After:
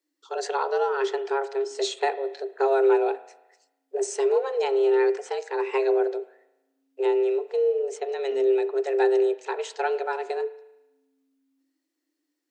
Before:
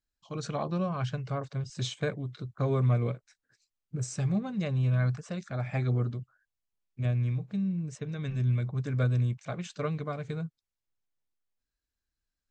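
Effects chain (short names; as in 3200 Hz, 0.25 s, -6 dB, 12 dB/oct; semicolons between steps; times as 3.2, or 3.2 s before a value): spring tank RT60 1 s, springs 36 ms, chirp 75 ms, DRR 14.5 dB; frequency shift +270 Hz; gain +6 dB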